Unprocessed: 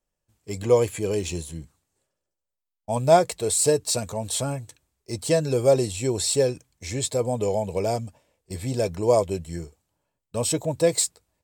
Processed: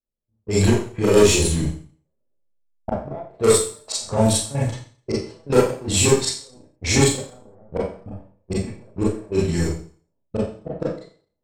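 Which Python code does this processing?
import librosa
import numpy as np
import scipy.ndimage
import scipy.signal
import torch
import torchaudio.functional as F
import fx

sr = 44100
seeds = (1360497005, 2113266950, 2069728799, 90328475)

y = fx.recorder_agc(x, sr, target_db=-9.5, rise_db_per_s=5.6, max_gain_db=30)
y = fx.gate_flip(y, sr, shuts_db=-12.0, range_db=-31)
y = fx.level_steps(y, sr, step_db=11)
y = fx.leveller(y, sr, passes=3)
y = fx.env_lowpass(y, sr, base_hz=440.0, full_db=-19.0)
y = fx.rev_schroeder(y, sr, rt60_s=0.44, comb_ms=28, drr_db=-7.0)
y = F.gain(torch.from_numpy(y), -1.0).numpy()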